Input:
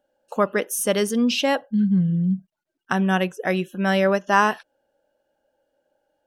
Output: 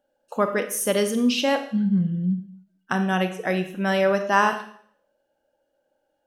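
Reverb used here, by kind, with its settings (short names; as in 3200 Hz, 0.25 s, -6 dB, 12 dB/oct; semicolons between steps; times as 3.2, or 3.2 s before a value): Schroeder reverb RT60 0.58 s, combs from 25 ms, DRR 7 dB; gain -2 dB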